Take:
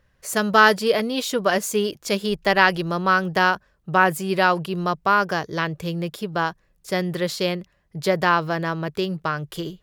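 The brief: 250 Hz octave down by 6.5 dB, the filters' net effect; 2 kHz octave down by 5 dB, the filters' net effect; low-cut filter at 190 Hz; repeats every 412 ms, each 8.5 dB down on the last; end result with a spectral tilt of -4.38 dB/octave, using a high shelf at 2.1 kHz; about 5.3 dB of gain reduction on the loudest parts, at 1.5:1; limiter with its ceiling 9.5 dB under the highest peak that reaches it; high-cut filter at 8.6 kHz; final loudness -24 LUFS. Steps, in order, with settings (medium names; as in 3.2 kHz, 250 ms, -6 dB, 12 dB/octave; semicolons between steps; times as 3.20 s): high-pass 190 Hz; low-pass 8.6 kHz; peaking EQ 250 Hz -7 dB; peaking EQ 2 kHz -4.5 dB; treble shelf 2.1 kHz -5 dB; compression 1.5:1, threshold -26 dBFS; peak limiter -19 dBFS; feedback delay 412 ms, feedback 38%, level -8.5 dB; trim +7 dB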